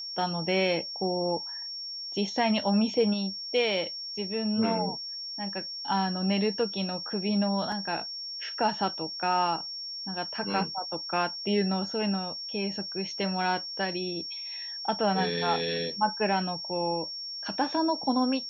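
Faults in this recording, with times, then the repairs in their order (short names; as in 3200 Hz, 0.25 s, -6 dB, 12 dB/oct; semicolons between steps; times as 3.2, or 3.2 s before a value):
tone 5500 Hz -35 dBFS
7.72 gap 2.6 ms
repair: notch 5500 Hz, Q 30; interpolate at 7.72, 2.6 ms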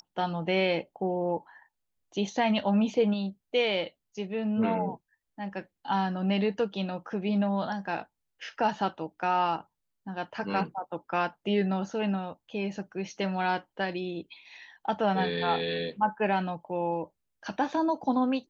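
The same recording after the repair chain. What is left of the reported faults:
none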